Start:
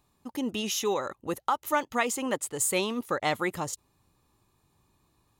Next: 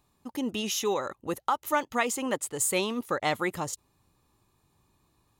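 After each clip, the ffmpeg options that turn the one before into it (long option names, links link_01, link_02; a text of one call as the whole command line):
ffmpeg -i in.wav -af anull out.wav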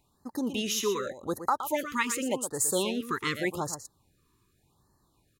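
ffmpeg -i in.wav -af "aecho=1:1:118:0.316,afftfilt=real='re*(1-between(b*sr/1024,620*pow(2900/620,0.5+0.5*sin(2*PI*0.86*pts/sr))/1.41,620*pow(2900/620,0.5+0.5*sin(2*PI*0.86*pts/sr))*1.41))':imag='im*(1-between(b*sr/1024,620*pow(2900/620,0.5+0.5*sin(2*PI*0.86*pts/sr))/1.41,620*pow(2900/620,0.5+0.5*sin(2*PI*0.86*pts/sr))*1.41))':win_size=1024:overlap=0.75" out.wav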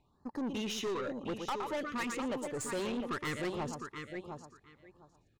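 ffmpeg -i in.wav -af "aecho=1:1:707|1414:0.282|0.0423,adynamicsmooth=sensitivity=1.5:basefreq=3500,aeval=exprs='(tanh(39.8*val(0)+0.2)-tanh(0.2))/39.8':channel_layout=same" out.wav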